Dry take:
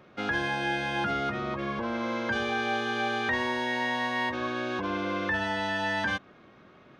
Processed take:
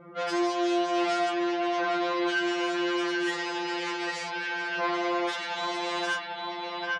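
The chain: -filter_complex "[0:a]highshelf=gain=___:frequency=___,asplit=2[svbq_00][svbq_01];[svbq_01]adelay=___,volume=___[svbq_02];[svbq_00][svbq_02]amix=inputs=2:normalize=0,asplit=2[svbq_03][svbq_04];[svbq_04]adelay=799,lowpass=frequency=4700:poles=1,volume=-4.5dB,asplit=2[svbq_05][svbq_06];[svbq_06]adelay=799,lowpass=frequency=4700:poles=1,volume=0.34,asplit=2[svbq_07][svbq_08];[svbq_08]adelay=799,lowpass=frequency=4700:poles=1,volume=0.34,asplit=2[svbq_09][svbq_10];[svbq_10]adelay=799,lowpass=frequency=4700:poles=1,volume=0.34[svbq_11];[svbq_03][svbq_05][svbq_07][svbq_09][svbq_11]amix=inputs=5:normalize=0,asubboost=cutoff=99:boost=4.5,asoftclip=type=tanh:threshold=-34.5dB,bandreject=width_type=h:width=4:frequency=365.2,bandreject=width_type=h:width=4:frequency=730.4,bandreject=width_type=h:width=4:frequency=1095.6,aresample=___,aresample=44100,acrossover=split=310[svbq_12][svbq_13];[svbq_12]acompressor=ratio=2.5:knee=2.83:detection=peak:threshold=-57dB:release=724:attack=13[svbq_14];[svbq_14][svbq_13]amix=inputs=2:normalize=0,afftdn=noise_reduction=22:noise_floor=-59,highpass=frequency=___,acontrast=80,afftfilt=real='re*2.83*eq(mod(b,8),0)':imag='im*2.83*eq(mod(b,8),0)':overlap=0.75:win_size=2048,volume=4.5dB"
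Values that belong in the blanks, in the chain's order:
-7.5, 3900, 20, -9dB, 32000, 52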